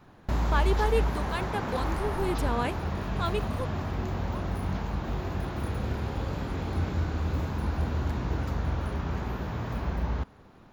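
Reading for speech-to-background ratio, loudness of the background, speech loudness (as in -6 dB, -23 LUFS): -1.0 dB, -31.5 LUFS, -32.5 LUFS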